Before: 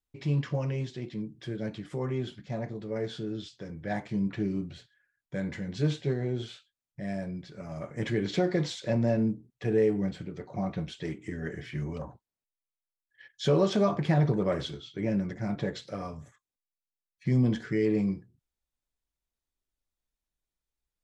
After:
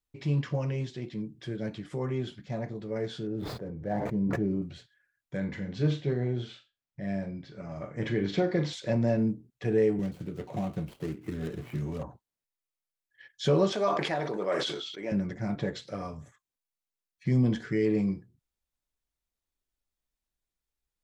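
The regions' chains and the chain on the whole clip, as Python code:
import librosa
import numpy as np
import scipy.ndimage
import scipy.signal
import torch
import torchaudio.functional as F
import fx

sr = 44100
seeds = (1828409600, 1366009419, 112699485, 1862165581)

y = fx.chain(x, sr, fx.median_filter(points=15),
    fx.curve_eq(hz=(330.0, 480.0, 3600.0), db=(0, 4, -13)),
    fx.sustainer(db_per_s=23.0), at=(3.27, 4.62))
y = fx.chain(y, sr, fx.air_absorb(metres=90.0),
    fx.room_flutter(wall_m=7.0, rt60_s=0.23), at=(5.37, 8.73))
y = fx.chain(y, sr, fx.median_filter(points=25),
    fx.high_shelf(hz=6500.0, db=8.5),
    fx.band_squash(depth_pct=70), at=(9.99, 12.03))
y = fx.chain(y, sr, fx.highpass(hz=430.0, slope=12),
    fx.sustainer(db_per_s=38.0), at=(13.72, 15.12))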